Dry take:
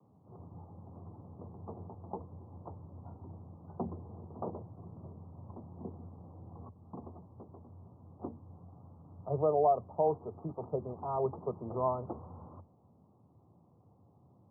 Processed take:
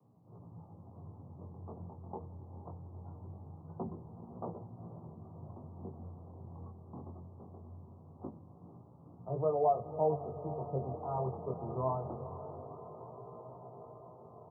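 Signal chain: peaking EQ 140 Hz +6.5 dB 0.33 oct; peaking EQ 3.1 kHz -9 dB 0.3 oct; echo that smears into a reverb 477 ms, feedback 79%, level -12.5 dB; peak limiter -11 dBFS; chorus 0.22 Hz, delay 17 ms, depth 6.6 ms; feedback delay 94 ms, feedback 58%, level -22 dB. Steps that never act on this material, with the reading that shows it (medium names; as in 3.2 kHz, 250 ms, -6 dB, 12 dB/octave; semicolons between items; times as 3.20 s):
peaking EQ 3.1 kHz: input has nothing above 1.3 kHz; peak limiter -11 dBFS: peak at its input -16.5 dBFS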